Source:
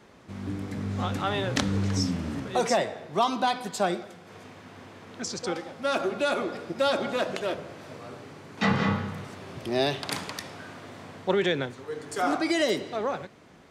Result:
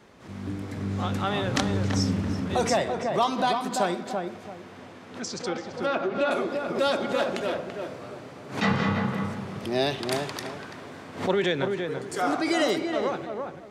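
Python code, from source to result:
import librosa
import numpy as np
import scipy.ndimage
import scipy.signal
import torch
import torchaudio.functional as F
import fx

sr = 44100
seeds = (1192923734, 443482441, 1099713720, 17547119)

y = fx.env_lowpass_down(x, sr, base_hz=2500.0, full_db=-22.0, at=(4.75, 6.31))
y = fx.echo_filtered(y, sr, ms=336, feedback_pct=28, hz=1600.0, wet_db=-4)
y = fx.pre_swell(y, sr, db_per_s=130.0)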